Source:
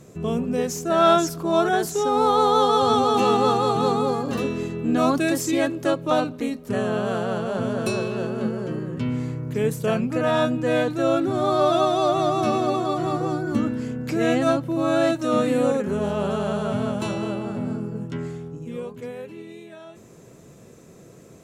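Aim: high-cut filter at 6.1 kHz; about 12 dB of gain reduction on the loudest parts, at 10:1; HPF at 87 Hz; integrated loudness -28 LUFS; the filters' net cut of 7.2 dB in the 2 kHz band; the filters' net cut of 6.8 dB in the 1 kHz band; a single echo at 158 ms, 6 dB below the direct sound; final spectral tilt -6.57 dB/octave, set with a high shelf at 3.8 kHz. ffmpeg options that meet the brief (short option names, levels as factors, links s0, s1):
-af "highpass=87,lowpass=6100,equalizer=f=1000:t=o:g=-8,equalizer=f=2000:t=o:g=-6,highshelf=f=3800:g=-3.5,acompressor=threshold=0.0316:ratio=10,aecho=1:1:158:0.501,volume=1.88"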